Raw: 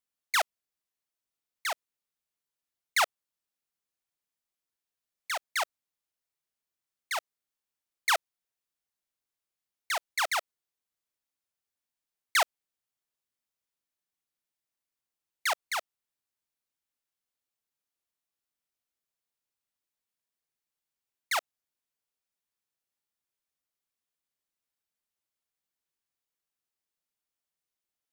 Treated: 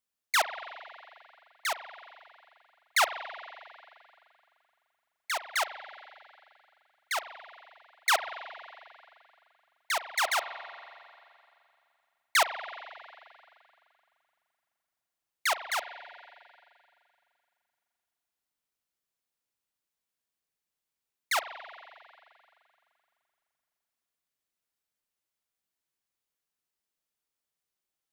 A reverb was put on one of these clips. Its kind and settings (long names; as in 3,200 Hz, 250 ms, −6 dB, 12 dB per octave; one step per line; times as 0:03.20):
spring reverb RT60 2.6 s, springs 42 ms, chirp 45 ms, DRR 9.5 dB
level +1 dB